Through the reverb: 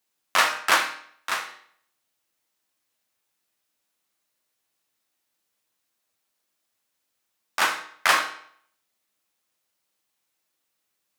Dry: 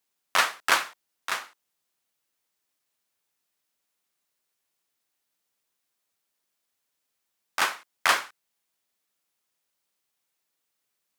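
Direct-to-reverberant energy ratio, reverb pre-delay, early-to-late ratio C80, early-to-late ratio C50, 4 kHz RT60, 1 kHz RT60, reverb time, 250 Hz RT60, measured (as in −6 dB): 2.5 dB, 6 ms, 12.5 dB, 9.0 dB, 0.55 s, 0.60 s, 0.60 s, 0.60 s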